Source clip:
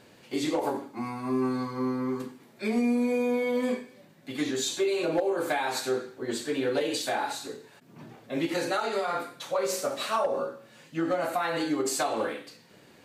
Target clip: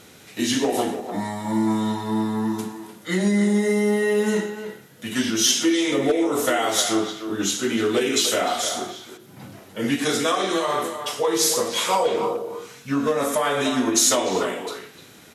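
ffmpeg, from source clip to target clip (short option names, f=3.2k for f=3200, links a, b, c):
-filter_complex "[0:a]crystalizer=i=2:c=0,asetrate=37485,aresample=44100,asplit=2[a][b];[b]adelay=300,highpass=300,lowpass=3.4k,asoftclip=type=hard:threshold=-20dB,volume=-8dB[c];[a][c]amix=inputs=2:normalize=0,volume=5.5dB"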